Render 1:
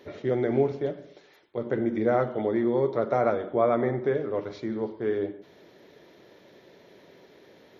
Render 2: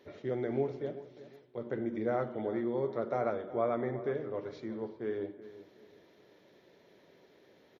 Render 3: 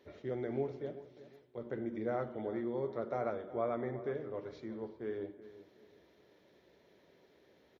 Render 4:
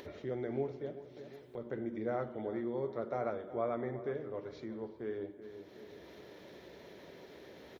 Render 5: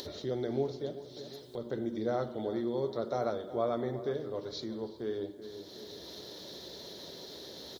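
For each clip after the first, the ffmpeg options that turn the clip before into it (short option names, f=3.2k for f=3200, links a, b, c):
-filter_complex "[0:a]asplit=2[a][b];[b]adelay=370,lowpass=f=2.7k:p=1,volume=-15dB,asplit=2[c][d];[d]adelay=370,lowpass=f=2.7k:p=1,volume=0.32,asplit=2[e][f];[f]adelay=370,lowpass=f=2.7k:p=1,volume=0.32[g];[a][c][e][g]amix=inputs=4:normalize=0,volume=-8.5dB"
-af "equalizer=f=68:w=4.6:g=14,volume=-4dB"
-af "acompressor=mode=upward:threshold=-40dB:ratio=2.5"
-af "highshelf=f=3.1k:t=q:w=3:g=9.5,volume=4dB"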